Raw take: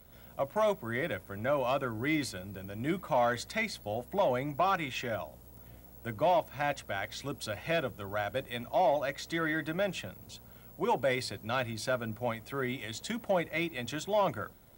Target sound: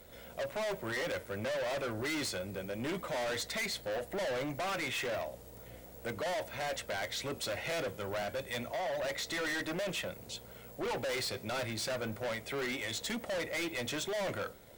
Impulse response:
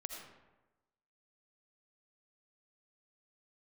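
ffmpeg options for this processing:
-filter_complex "[0:a]equalizer=f=500:t=o:w=1:g=10,equalizer=f=2000:t=o:w=1:g=7,equalizer=f=4000:t=o:w=1:g=5,equalizer=f=8000:t=o:w=1:g=6,asettb=1/sr,asplit=3[s0][s1][s2];[s0]atrim=end=8.224[s3];[s1]atrim=start=8.22:end=9,asetpts=PTS-STARTPTS,afade=t=in:d=0.004:c=qsin,afade=t=out:st=0.776:d=0.004:c=qsin,acrossover=split=200|3000[s4][s5][s6];[s5]acompressor=threshold=0.0355:ratio=2.5[s7];[s4][s7][s6]amix=inputs=3:normalize=0[s8];[s2]atrim=start=8.996[s9];[s3][s8]acrossfade=d=0.004:c1=hsin:c2=qsin[s10];[s10][s9]acrossfade=d=0.004:c1=qsin:c2=hsin,asoftclip=type=tanh:threshold=0.0473,flanger=delay=3.4:depth=5.5:regen=-83:speed=0.31:shape=triangular,asoftclip=type=hard:threshold=0.0141,volume=1.5"

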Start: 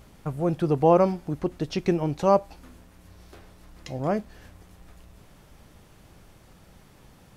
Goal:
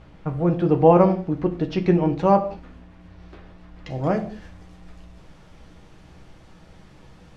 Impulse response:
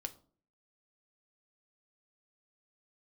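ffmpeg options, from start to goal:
-filter_complex "[0:a]asetnsamples=n=441:p=0,asendcmd='3.9 lowpass f 5800',lowpass=3200[s0];[1:a]atrim=start_sample=2205,afade=t=out:st=0.18:d=0.01,atrim=end_sample=8379,asetrate=26460,aresample=44100[s1];[s0][s1]afir=irnorm=-1:irlink=0,volume=1.41"

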